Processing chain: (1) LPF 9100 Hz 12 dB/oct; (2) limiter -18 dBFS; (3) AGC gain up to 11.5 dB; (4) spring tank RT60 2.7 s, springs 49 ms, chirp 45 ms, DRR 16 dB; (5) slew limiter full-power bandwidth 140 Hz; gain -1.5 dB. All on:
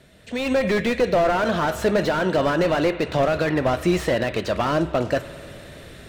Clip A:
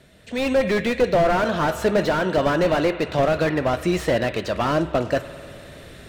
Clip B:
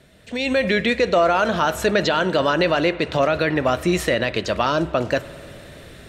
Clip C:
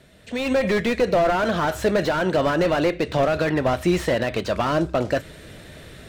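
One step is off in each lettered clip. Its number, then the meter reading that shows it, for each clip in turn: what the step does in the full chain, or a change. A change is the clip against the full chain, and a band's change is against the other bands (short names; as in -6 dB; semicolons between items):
2, momentary loudness spread change -3 LU; 5, distortion -6 dB; 4, momentary loudness spread change -5 LU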